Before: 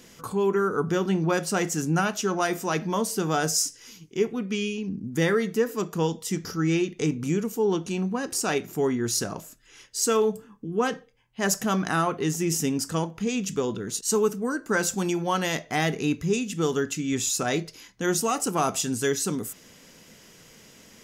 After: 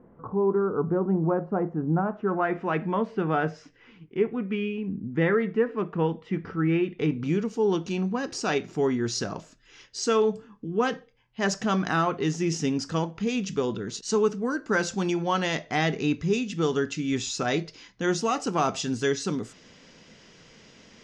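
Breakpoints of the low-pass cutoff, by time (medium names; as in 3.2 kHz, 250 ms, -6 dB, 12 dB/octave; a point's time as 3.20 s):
low-pass 24 dB/octave
2.05 s 1.1 kHz
2.62 s 2.5 kHz
6.74 s 2.5 kHz
7.54 s 5.6 kHz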